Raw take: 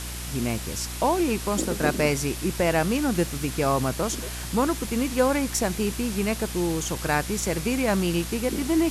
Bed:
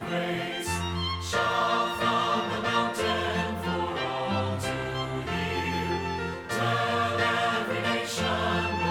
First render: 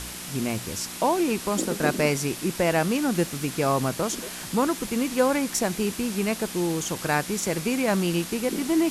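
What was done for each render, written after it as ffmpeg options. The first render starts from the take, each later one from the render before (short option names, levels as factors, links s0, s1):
-af "bandreject=f=60:t=h:w=4,bandreject=f=120:t=h:w=4"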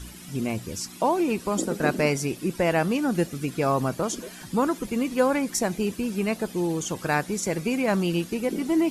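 -af "afftdn=nr=13:nf=-37"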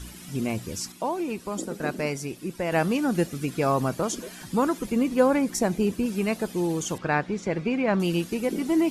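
-filter_complex "[0:a]asettb=1/sr,asplit=3[s0][s1][s2];[s0]atrim=end=4.924[s3];[s1]atrim=start=4.92:end=6.06,asetpts=PTS-STARTPTS,afade=t=in:d=0.004:c=qsin,afade=t=out:st=1.136:d=0.004:c=qsin,tiltshelf=f=970:g=3[s4];[s2]atrim=start=6.056[s5];[s3][s4]acrossfade=d=0.004:c1=hsin:c2=qsin[s6];[s6][s5]acrossfade=d=0.004:c1=qsin:c2=hsin,asettb=1/sr,asplit=3[s7][s8][s9];[s7]atrim=end=6.984[s10];[s8]atrim=start=6.98:end=8,asetpts=PTS-STARTPTS,afade=t=in:d=0.004:c=qsin,afade=t=out:st=1.016:d=0.004:c=qsin,lowpass=3100[s11];[s9]atrim=start=7.996[s12];[s10][s11]acrossfade=d=0.004:c1=hsin:c2=qsin[s13];[s13][s12]acrossfade=d=0.004:c1=qsin:c2=hsin,asplit=3[s14][s15][s16];[s14]atrim=end=0.922[s17];[s15]atrim=start=0.918:end=2.722,asetpts=PTS-STARTPTS,volume=0.531[s18];[s16]atrim=start=2.718[s19];[s17][s18]acrossfade=d=0.004:c1=hsin:c2=hsin[s20];[s20][s19]acrossfade=d=0.004:c1=hsin:c2=hsin"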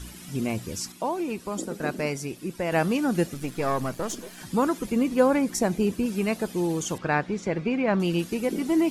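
-filter_complex "[0:a]asettb=1/sr,asplit=3[s0][s1][s2];[s0]atrim=end=3.344[s3];[s1]atrim=start=3.34:end=4.38,asetpts=PTS-STARTPTS,afade=t=in:d=0.004:c=qsin,afade=t=out:st=1.036:d=0.004:c=qsin,aeval=exprs='if(lt(val(0),0),0.447*val(0),val(0))':c=same[s4];[s2]atrim=start=4.376[s5];[s3][s4]acrossfade=d=0.004:c1=hsin:c2=qsin[s6];[s6][s5]acrossfade=d=0.004:c1=qsin:c2=hsin,asettb=1/sr,asplit=3[s7][s8][s9];[s7]atrim=end=7.504[s10];[s8]atrim=start=7.5:end=8.19,asetpts=PTS-STARTPTS,afade=t=in:d=0.004:c=qsin,afade=t=out:st=0.686:d=0.004:c=qsin,highshelf=f=8100:g=-7.5[s11];[s9]atrim=start=8.186[s12];[s10][s11]acrossfade=d=0.004:c1=hsin:c2=qsin[s13];[s13][s12]acrossfade=d=0.004:c1=qsin:c2=hsin"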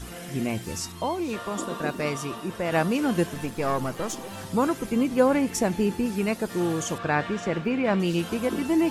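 -filter_complex "[1:a]volume=0.251[s0];[0:a][s0]amix=inputs=2:normalize=0"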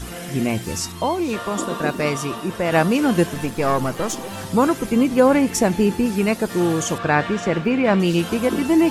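-af "volume=2.11,alimiter=limit=0.708:level=0:latency=1"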